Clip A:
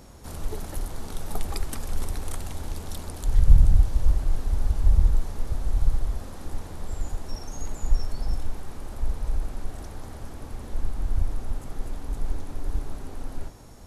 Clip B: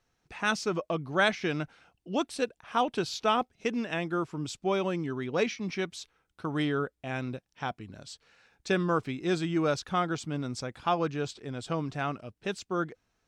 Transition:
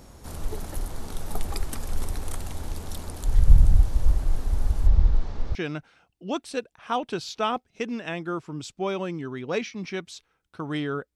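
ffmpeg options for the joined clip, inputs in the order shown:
-filter_complex "[0:a]asettb=1/sr,asplit=3[s0][s1][s2];[s0]atrim=end=4.874[s3];[s1]atrim=start=4.87:end=5.55,asetpts=PTS-STARTPTS,afade=t=in:d=0.004:c=qsin,afade=t=out:st=0.676:d=0.004:c=qsin,lowpass=f=5300:w=0.5412,lowpass=f=5300:w=1.3066[s4];[s2]atrim=start=5.546[s5];[s3][s4]acrossfade=d=0.004:c1=hsin:c2=qsin[s6];[s6][s5]acrossfade=d=0.004:c1=qsin:c2=hsin,apad=whole_dur=11.15,atrim=end=11.15,atrim=end=5.552[s7];[1:a]atrim=start=1.398:end=7[s8];[s7][s8]acrossfade=d=0.004:c1=hsin:c2=hsin"

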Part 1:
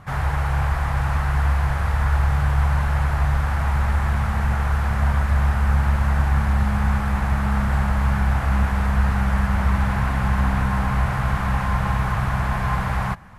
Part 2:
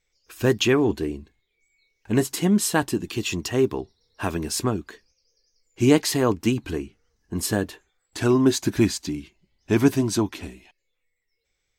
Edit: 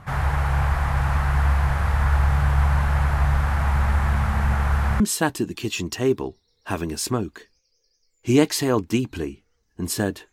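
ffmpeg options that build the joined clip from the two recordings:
-filter_complex "[0:a]apad=whole_dur=10.32,atrim=end=10.32,atrim=end=5.002[s0];[1:a]atrim=start=2.528:end=7.85[s1];[s0][s1]acrossfade=d=0.004:c1=hsin:c2=hsin"

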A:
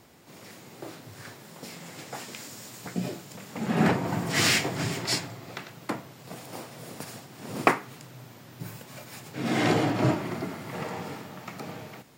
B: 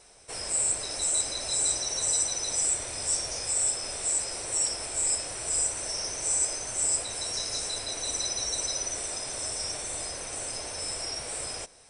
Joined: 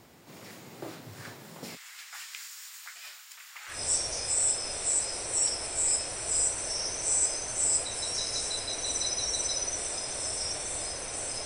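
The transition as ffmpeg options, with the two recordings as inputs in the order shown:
-filter_complex "[0:a]asplit=3[s0][s1][s2];[s0]afade=t=out:st=1.75:d=0.02[s3];[s1]highpass=f=1300:w=0.5412,highpass=f=1300:w=1.3066,afade=t=in:st=1.75:d=0.02,afade=t=out:st=3.82:d=0.02[s4];[s2]afade=t=in:st=3.82:d=0.02[s5];[s3][s4][s5]amix=inputs=3:normalize=0,apad=whole_dur=11.45,atrim=end=11.45,atrim=end=3.82,asetpts=PTS-STARTPTS[s6];[1:a]atrim=start=2.85:end=10.64,asetpts=PTS-STARTPTS[s7];[s6][s7]acrossfade=d=0.16:c1=tri:c2=tri"

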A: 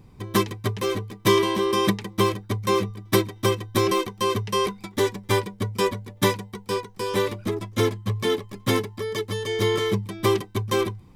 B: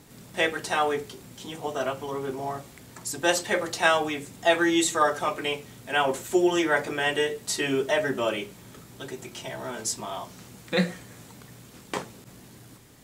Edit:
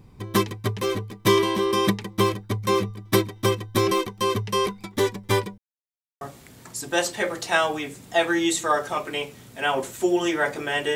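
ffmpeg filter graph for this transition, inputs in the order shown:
-filter_complex "[0:a]apad=whole_dur=10.95,atrim=end=10.95,asplit=2[s0][s1];[s0]atrim=end=5.58,asetpts=PTS-STARTPTS,afade=t=out:st=5.576:d=0.004:c=hsin[s2];[s1]atrim=start=5.58:end=6.21,asetpts=PTS-STARTPTS,volume=0[s3];[1:a]atrim=start=2.52:end=7.26,asetpts=PTS-STARTPTS,afade=t=in:d=0.004:c=hsin[s4];[s2][s3][s4]concat=n=3:v=0:a=1"

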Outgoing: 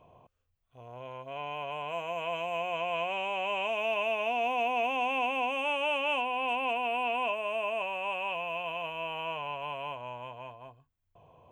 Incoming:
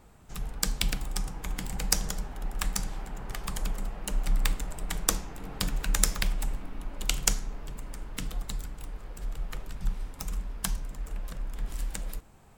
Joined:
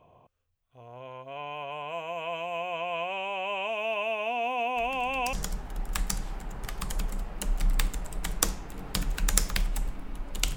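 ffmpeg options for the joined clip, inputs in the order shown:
-filter_complex "[1:a]asplit=2[s0][s1];[0:a]apad=whole_dur=10.56,atrim=end=10.56,atrim=end=5.332[s2];[s1]atrim=start=1.988:end=7.22[s3];[s0]atrim=start=1.42:end=1.99,asetpts=PTS-STARTPTS,volume=0.188,afade=t=in:d=0.004:c=hsin,afade=t=out:st=0.566:d=0.004:c=hsin,adelay=4760[s4];[s2][s3]acrossfade=d=0.004:c1=hsin:c2=hsin[s5];[s5][s4]amix=inputs=2:normalize=0"

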